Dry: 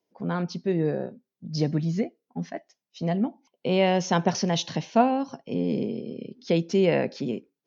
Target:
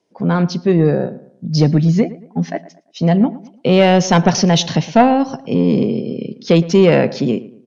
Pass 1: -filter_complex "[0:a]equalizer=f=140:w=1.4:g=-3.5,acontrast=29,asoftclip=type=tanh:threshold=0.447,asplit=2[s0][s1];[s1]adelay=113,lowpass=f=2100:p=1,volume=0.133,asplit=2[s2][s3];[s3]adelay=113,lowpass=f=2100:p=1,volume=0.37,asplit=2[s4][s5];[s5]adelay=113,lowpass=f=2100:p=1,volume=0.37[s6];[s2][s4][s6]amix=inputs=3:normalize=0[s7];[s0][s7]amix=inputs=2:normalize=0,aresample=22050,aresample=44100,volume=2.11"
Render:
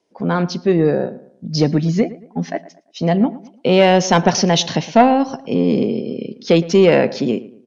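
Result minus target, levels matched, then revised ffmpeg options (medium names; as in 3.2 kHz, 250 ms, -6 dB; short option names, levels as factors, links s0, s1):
125 Hz band -3.5 dB
-filter_complex "[0:a]equalizer=f=140:w=1.4:g=3,acontrast=29,asoftclip=type=tanh:threshold=0.447,asplit=2[s0][s1];[s1]adelay=113,lowpass=f=2100:p=1,volume=0.133,asplit=2[s2][s3];[s3]adelay=113,lowpass=f=2100:p=1,volume=0.37,asplit=2[s4][s5];[s5]adelay=113,lowpass=f=2100:p=1,volume=0.37[s6];[s2][s4][s6]amix=inputs=3:normalize=0[s7];[s0][s7]amix=inputs=2:normalize=0,aresample=22050,aresample=44100,volume=2.11"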